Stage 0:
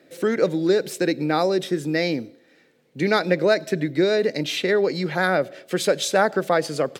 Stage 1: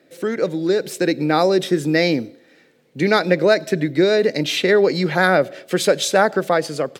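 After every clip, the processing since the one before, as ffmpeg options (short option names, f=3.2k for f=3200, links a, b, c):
-af "dynaudnorm=f=360:g=5:m=11.5dB,volume=-1dB"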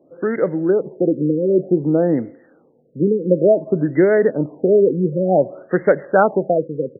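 -af "afftfilt=real='re*lt(b*sr/1024,520*pow(2200/520,0.5+0.5*sin(2*PI*0.55*pts/sr)))':imag='im*lt(b*sr/1024,520*pow(2200/520,0.5+0.5*sin(2*PI*0.55*pts/sr)))':win_size=1024:overlap=0.75,volume=2dB"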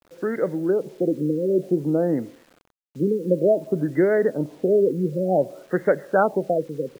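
-af "acrusher=bits=7:mix=0:aa=0.000001,volume=-5dB"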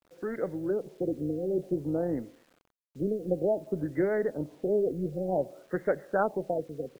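-af "tremolo=f=210:d=0.333,volume=-7dB"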